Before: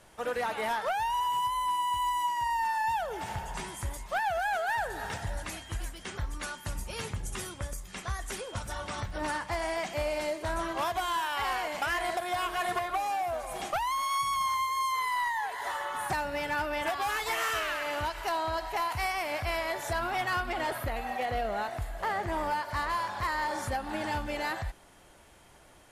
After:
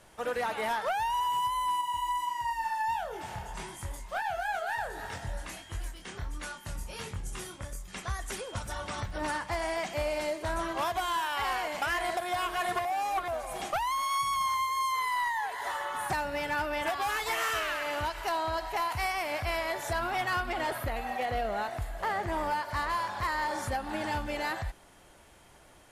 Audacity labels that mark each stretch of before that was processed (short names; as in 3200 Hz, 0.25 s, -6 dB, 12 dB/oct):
1.810000	7.880000	chorus 1.5 Hz
12.850000	13.280000	reverse